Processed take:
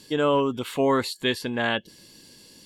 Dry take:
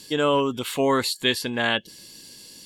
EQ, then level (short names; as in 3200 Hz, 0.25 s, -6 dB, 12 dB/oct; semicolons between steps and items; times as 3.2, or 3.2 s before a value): high shelf 2600 Hz -8 dB; 0.0 dB